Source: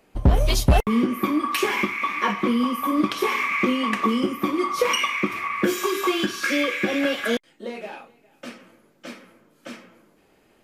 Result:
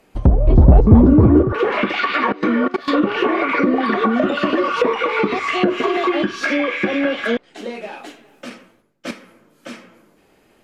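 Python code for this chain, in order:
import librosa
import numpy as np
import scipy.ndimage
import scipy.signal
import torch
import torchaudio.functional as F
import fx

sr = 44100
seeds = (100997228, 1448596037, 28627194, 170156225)

y = fx.echo_pitch(x, sr, ms=375, semitones=4, count=3, db_per_echo=-3.0)
y = fx.leveller(y, sr, passes=2, at=(0.47, 1.43))
y = fx.level_steps(y, sr, step_db=20, at=(2.32, 2.88))
y = fx.env_lowpass_down(y, sr, base_hz=510.0, full_db=-13.0)
y = fx.band_widen(y, sr, depth_pct=100, at=(8.5, 9.11))
y = y * 10.0 ** (4.0 / 20.0)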